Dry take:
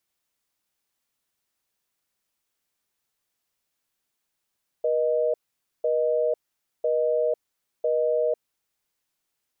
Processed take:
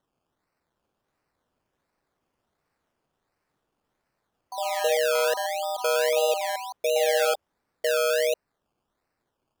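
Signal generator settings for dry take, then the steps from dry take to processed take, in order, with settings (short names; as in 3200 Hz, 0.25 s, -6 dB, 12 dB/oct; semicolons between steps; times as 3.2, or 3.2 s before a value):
call progress tone busy tone, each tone -23 dBFS 3.68 s
decimation with a swept rate 18×, swing 60% 1.4 Hz; echoes that change speed 0.735 s, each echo +4 st, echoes 3, each echo -6 dB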